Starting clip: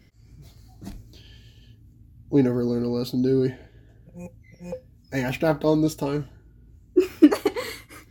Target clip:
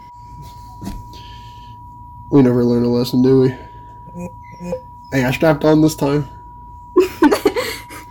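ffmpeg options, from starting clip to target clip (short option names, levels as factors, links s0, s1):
-af "aeval=exprs='0.75*(cos(1*acos(clip(val(0)/0.75,-1,1)))-cos(1*PI/2))+0.335*(cos(5*acos(clip(val(0)/0.75,-1,1)))-cos(5*PI/2))':c=same,aeval=exprs='val(0)+0.0158*sin(2*PI*970*n/s)':c=same"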